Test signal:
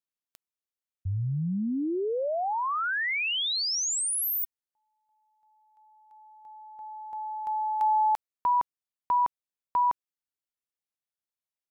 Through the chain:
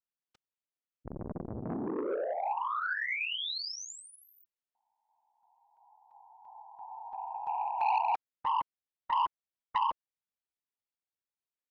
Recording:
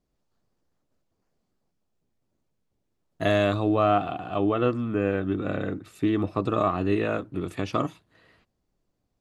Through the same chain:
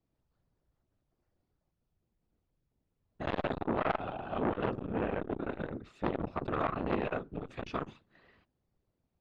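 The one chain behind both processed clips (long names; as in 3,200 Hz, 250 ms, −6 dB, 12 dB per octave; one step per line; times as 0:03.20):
random phases in short frames
high-frequency loss of the air 150 metres
saturating transformer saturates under 1,100 Hz
level −3.5 dB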